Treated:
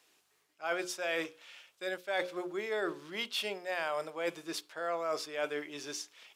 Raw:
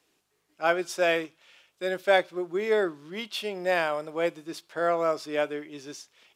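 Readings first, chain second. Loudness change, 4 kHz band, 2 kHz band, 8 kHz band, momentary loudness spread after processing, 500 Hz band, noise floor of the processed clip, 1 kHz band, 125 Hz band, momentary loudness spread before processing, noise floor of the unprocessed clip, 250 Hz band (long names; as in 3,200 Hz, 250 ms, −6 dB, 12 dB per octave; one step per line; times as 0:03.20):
−8.5 dB, −3.0 dB, −7.0 dB, −0.5 dB, 7 LU, −9.5 dB, −73 dBFS, −9.0 dB, −11.5 dB, 16 LU, −73 dBFS, −8.5 dB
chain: low-shelf EQ 400 Hz −11 dB
mains-hum notches 60/120/180/240/300/360/420/480/540 Hz
reversed playback
downward compressor 6 to 1, threshold −35 dBFS, peak gain reduction 15.5 dB
reversed playback
level +3.5 dB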